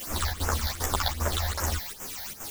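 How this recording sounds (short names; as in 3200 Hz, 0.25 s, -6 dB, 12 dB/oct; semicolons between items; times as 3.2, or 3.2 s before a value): a quantiser's noise floor 6-bit, dither triangular; phasing stages 8, 2.6 Hz, lowest notch 340–4100 Hz; chopped level 2.5 Hz, depth 65%, duty 80%; a shimmering, thickened sound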